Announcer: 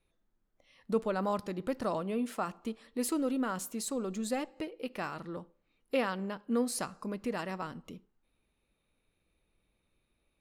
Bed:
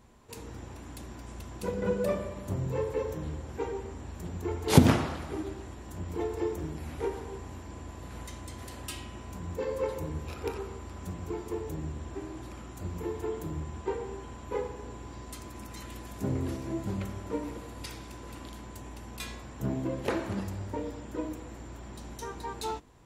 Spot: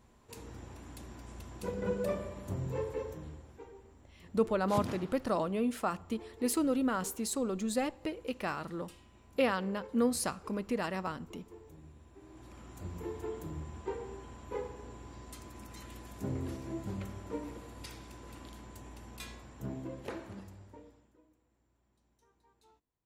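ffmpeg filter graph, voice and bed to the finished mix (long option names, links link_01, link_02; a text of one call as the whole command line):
ffmpeg -i stem1.wav -i stem2.wav -filter_complex "[0:a]adelay=3450,volume=1.5dB[link_01];[1:a]volume=7.5dB,afade=type=out:start_time=2.78:duration=0.86:silence=0.223872,afade=type=in:start_time=12.17:duration=0.59:silence=0.251189,afade=type=out:start_time=19.06:duration=2.13:silence=0.0473151[link_02];[link_01][link_02]amix=inputs=2:normalize=0" out.wav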